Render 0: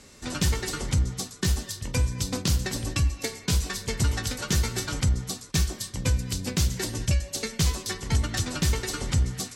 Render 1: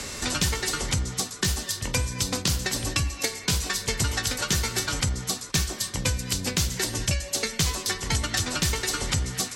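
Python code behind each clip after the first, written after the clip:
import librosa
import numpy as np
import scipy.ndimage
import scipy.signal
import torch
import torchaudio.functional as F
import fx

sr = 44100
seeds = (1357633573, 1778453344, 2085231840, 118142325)

y = fx.low_shelf(x, sr, hz=390.0, db=-9.0)
y = fx.band_squash(y, sr, depth_pct=70)
y = y * 10.0 ** (4.5 / 20.0)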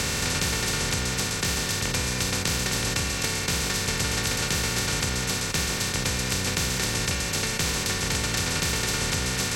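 y = fx.bin_compress(x, sr, power=0.2)
y = y * 10.0 ** (-8.5 / 20.0)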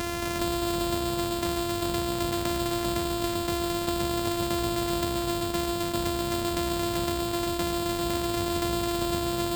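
y = np.r_[np.sort(x[:len(x) // 128 * 128].reshape(-1, 128), axis=1).ravel(), x[len(x) // 128 * 128:]]
y = y + 10.0 ** (-4.0 / 20.0) * np.pad(y, (int(395 * sr / 1000.0), 0))[:len(y)]
y = y * 10.0 ** (-4.0 / 20.0)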